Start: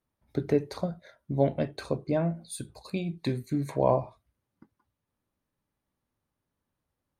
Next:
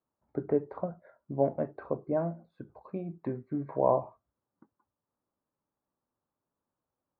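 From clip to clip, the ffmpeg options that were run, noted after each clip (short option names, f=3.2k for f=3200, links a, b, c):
-af "lowpass=f=1.3k:w=0.5412,lowpass=f=1.3k:w=1.3066,aemphasis=mode=production:type=bsi"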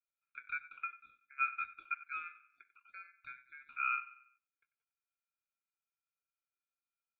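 -filter_complex "[0:a]asplit=3[a][b][c];[a]bandpass=f=530:t=q:w=8,volume=0dB[d];[b]bandpass=f=1.84k:t=q:w=8,volume=-6dB[e];[c]bandpass=f=2.48k:t=q:w=8,volume=-9dB[f];[d][e][f]amix=inputs=3:normalize=0,asplit=2[g][h];[h]adelay=94,lowpass=f=2.1k:p=1,volume=-16dB,asplit=2[i][j];[j]adelay=94,lowpass=f=2.1k:p=1,volume=0.44,asplit=2[k][l];[l]adelay=94,lowpass=f=2.1k:p=1,volume=0.44,asplit=2[m][n];[n]adelay=94,lowpass=f=2.1k:p=1,volume=0.44[o];[g][i][k][m][o]amix=inputs=5:normalize=0,aeval=exprs='val(0)*sin(2*PI*1900*n/s)':c=same"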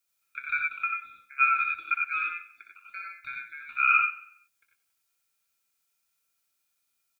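-af "highshelf=f=2.9k:g=10,aecho=1:1:61|89|101:0.422|0.596|0.596,volume=7.5dB"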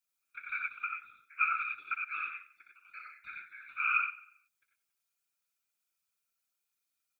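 -af "afftfilt=real='hypot(re,im)*cos(2*PI*random(0))':imag='hypot(re,im)*sin(2*PI*random(1))':win_size=512:overlap=0.75,volume=-2dB"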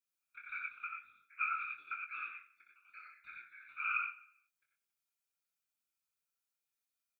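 -filter_complex "[0:a]asplit=2[a][b];[b]adelay=23,volume=-5.5dB[c];[a][c]amix=inputs=2:normalize=0,volume=-7dB"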